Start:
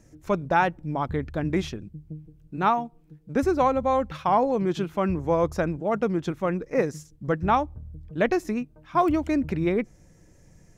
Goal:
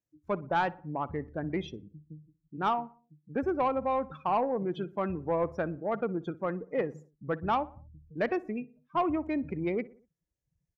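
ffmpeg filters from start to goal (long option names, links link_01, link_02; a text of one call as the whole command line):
ffmpeg -i in.wav -filter_complex "[0:a]afftdn=noise_reduction=31:noise_floor=-35,highpass=60,lowshelf=frequency=250:gain=-6.5,asoftclip=type=tanh:threshold=-15dB,asplit=2[link_01][link_02];[link_02]adelay=60,lowpass=frequency=1800:poles=1,volume=-19dB,asplit=2[link_03][link_04];[link_04]adelay=60,lowpass=frequency=1800:poles=1,volume=0.51,asplit=2[link_05][link_06];[link_06]adelay=60,lowpass=frequency=1800:poles=1,volume=0.51,asplit=2[link_07][link_08];[link_08]adelay=60,lowpass=frequency=1800:poles=1,volume=0.51[link_09];[link_03][link_05][link_07][link_09]amix=inputs=4:normalize=0[link_10];[link_01][link_10]amix=inputs=2:normalize=0,volume=-4dB" out.wav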